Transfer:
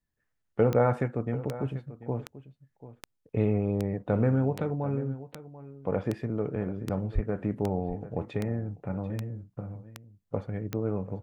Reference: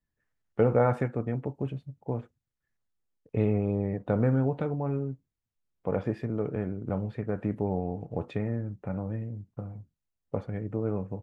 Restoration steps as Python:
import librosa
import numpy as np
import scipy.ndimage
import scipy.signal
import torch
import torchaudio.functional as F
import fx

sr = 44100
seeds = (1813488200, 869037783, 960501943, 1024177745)

y = fx.fix_declick_ar(x, sr, threshold=10.0)
y = fx.fix_deplosive(y, sr, at_s=(7.14,))
y = fx.fix_echo_inverse(y, sr, delay_ms=739, level_db=-15.5)